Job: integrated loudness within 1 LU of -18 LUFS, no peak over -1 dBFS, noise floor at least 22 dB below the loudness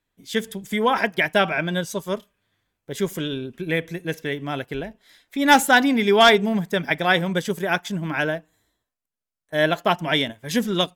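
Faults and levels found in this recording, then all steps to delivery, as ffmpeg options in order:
loudness -21.5 LUFS; peak -5.5 dBFS; loudness target -18.0 LUFS
-> -af "volume=3.5dB"

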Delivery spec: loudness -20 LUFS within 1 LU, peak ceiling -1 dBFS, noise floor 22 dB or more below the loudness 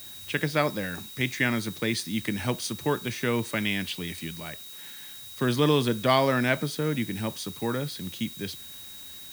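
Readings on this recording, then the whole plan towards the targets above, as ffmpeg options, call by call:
steady tone 3800 Hz; tone level -45 dBFS; noise floor -43 dBFS; noise floor target -50 dBFS; loudness -28.0 LUFS; peak -7.5 dBFS; loudness target -20.0 LUFS
-> -af "bandreject=f=3.8k:w=30"
-af "afftdn=nr=7:nf=-43"
-af "volume=8dB,alimiter=limit=-1dB:level=0:latency=1"

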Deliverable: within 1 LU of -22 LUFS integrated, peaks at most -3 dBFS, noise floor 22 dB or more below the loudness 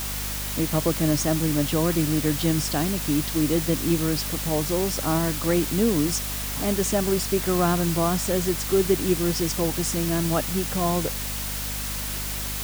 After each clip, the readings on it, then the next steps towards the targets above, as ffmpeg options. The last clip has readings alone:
hum 50 Hz; harmonics up to 250 Hz; hum level -31 dBFS; noise floor -30 dBFS; noise floor target -46 dBFS; loudness -23.5 LUFS; peak -8.0 dBFS; loudness target -22.0 LUFS
-> -af "bandreject=f=50:t=h:w=6,bandreject=f=100:t=h:w=6,bandreject=f=150:t=h:w=6,bandreject=f=200:t=h:w=6,bandreject=f=250:t=h:w=6"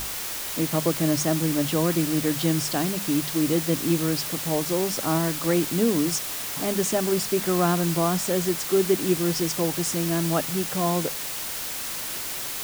hum none; noise floor -32 dBFS; noise floor target -46 dBFS
-> -af "afftdn=nr=14:nf=-32"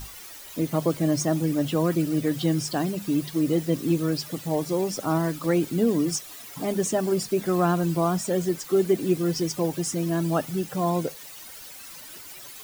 noise floor -43 dBFS; noise floor target -48 dBFS
-> -af "afftdn=nr=6:nf=-43"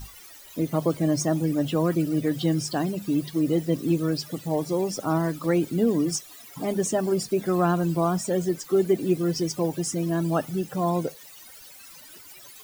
noise floor -47 dBFS; noise floor target -48 dBFS
-> -af "afftdn=nr=6:nf=-47"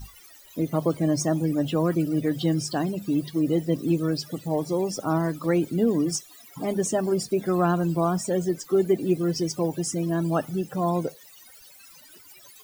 noise floor -50 dBFS; loudness -25.5 LUFS; peak -10.5 dBFS; loudness target -22.0 LUFS
-> -af "volume=3.5dB"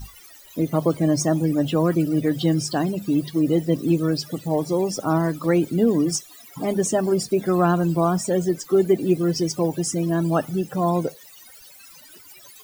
loudness -22.0 LUFS; peak -7.0 dBFS; noise floor -47 dBFS

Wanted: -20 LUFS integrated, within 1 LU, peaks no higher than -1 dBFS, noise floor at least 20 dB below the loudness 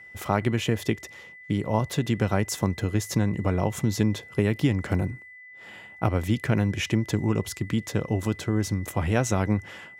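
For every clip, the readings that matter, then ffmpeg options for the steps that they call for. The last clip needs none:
steady tone 2000 Hz; tone level -44 dBFS; loudness -26.5 LUFS; peak -8.0 dBFS; loudness target -20.0 LUFS
-> -af "bandreject=f=2k:w=30"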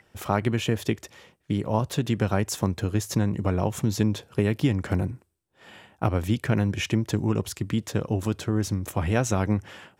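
steady tone none; loudness -26.5 LUFS; peak -8.0 dBFS; loudness target -20.0 LUFS
-> -af "volume=6.5dB"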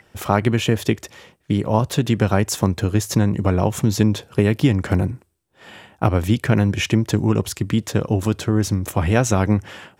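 loudness -20.0 LUFS; peak -1.5 dBFS; noise floor -59 dBFS

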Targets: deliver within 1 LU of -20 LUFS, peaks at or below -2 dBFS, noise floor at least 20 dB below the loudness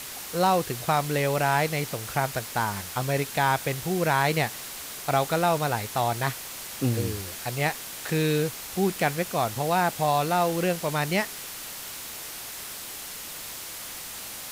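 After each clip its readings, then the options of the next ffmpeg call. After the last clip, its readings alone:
noise floor -38 dBFS; noise floor target -47 dBFS; loudness -27.0 LUFS; peak -10.0 dBFS; loudness target -20.0 LUFS
-> -af "afftdn=nr=9:nf=-38"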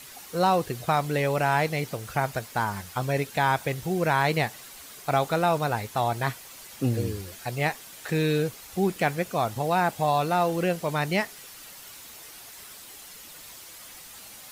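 noise floor -46 dBFS; noise floor target -47 dBFS
-> -af "afftdn=nr=6:nf=-46"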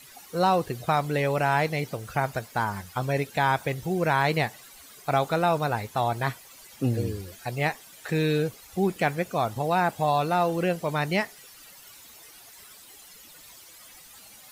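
noise floor -50 dBFS; loudness -26.5 LUFS; peak -10.5 dBFS; loudness target -20.0 LUFS
-> -af "volume=6.5dB"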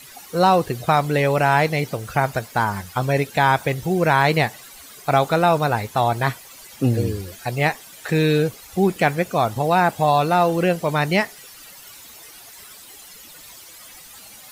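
loudness -20.0 LUFS; peak -4.0 dBFS; noise floor -43 dBFS

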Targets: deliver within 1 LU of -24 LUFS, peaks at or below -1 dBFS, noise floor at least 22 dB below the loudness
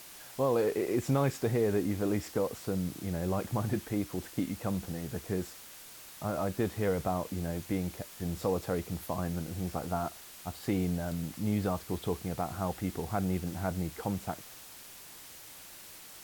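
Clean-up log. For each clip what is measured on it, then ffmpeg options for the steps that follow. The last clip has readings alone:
noise floor -50 dBFS; noise floor target -56 dBFS; loudness -33.5 LUFS; peak -17.5 dBFS; loudness target -24.0 LUFS
-> -af "afftdn=nr=6:nf=-50"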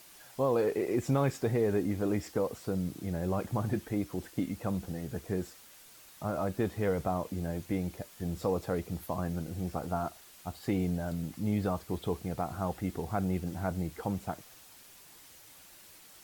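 noise floor -55 dBFS; noise floor target -56 dBFS
-> -af "afftdn=nr=6:nf=-55"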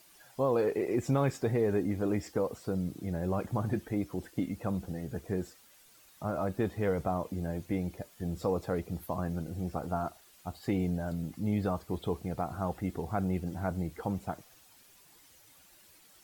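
noise floor -60 dBFS; loudness -33.5 LUFS; peak -18.0 dBFS; loudness target -24.0 LUFS
-> -af "volume=9.5dB"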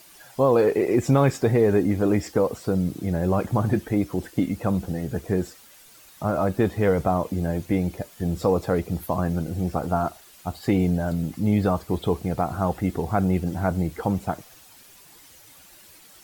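loudness -24.0 LUFS; peak -8.5 dBFS; noise floor -50 dBFS

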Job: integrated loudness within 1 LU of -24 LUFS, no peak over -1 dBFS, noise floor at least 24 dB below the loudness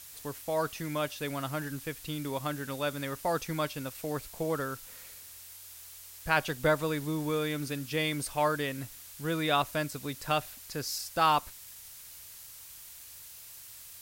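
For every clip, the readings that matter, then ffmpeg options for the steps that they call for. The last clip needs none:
noise floor -49 dBFS; noise floor target -56 dBFS; loudness -32.0 LUFS; peak -11.5 dBFS; loudness target -24.0 LUFS
-> -af "afftdn=nr=7:nf=-49"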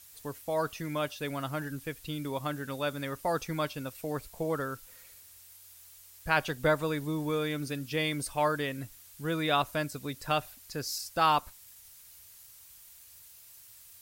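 noise floor -54 dBFS; noise floor target -57 dBFS
-> -af "afftdn=nr=6:nf=-54"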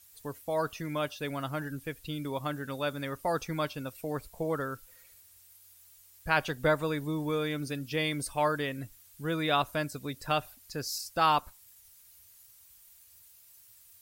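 noise floor -58 dBFS; loudness -32.5 LUFS; peak -11.5 dBFS; loudness target -24.0 LUFS
-> -af "volume=8.5dB"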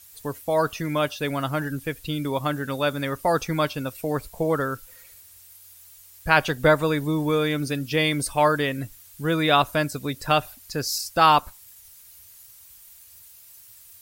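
loudness -24.0 LUFS; peak -3.0 dBFS; noise floor -49 dBFS

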